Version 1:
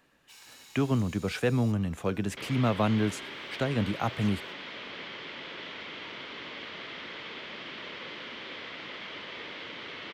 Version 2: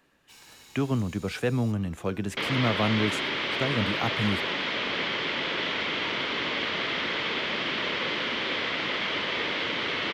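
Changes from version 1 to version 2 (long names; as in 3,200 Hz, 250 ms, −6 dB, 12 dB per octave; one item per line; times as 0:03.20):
first sound: add low-shelf EQ 470 Hz +11.5 dB
second sound +12.0 dB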